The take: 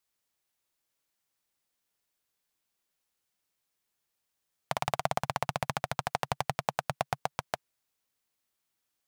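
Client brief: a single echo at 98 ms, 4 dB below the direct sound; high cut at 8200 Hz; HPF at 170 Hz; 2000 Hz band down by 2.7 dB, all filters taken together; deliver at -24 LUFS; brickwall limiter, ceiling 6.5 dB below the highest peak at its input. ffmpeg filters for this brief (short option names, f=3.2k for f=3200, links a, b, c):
-af "highpass=170,lowpass=8.2k,equalizer=f=2k:t=o:g=-3.5,alimiter=limit=-16.5dB:level=0:latency=1,aecho=1:1:98:0.631,volume=14.5dB"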